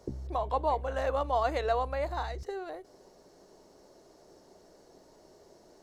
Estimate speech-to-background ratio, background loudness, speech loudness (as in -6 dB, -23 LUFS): 10.0 dB, -42.5 LUFS, -32.5 LUFS